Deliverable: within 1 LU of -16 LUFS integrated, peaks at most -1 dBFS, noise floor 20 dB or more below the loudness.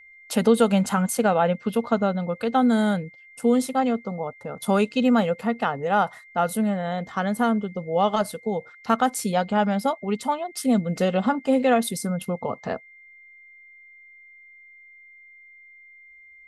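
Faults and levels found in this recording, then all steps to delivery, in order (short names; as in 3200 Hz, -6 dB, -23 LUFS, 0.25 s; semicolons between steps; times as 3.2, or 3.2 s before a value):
steady tone 2100 Hz; tone level -47 dBFS; loudness -23.5 LUFS; peak -7.5 dBFS; loudness target -16.0 LUFS
-> notch 2100 Hz, Q 30; gain +7.5 dB; limiter -1 dBFS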